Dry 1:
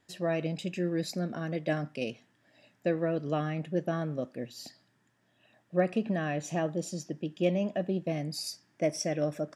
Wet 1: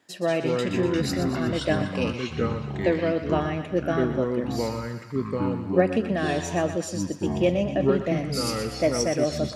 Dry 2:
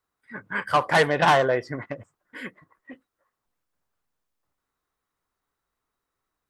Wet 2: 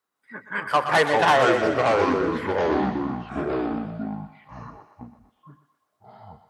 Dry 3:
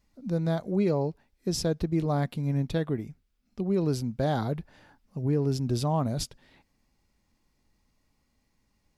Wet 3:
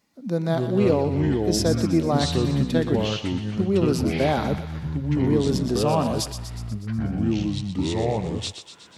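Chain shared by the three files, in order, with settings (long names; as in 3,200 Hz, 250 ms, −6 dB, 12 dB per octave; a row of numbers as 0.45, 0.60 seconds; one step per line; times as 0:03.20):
high-pass filter 190 Hz 12 dB per octave
delay with pitch and tempo change per echo 153 ms, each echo −5 semitones, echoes 3
on a send: feedback echo with a high-pass in the loop 122 ms, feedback 62%, high-pass 720 Hz, level −9 dB
on the sum: normalise the peak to −6 dBFS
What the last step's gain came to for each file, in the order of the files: +6.0, 0.0, +6.0 decibels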